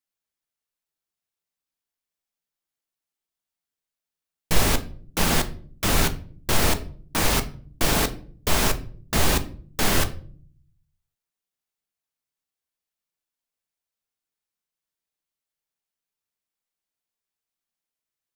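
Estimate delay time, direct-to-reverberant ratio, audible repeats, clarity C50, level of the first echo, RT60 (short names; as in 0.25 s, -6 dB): none, 8.5 dB, none, 16.0 dB, none, 0.50 s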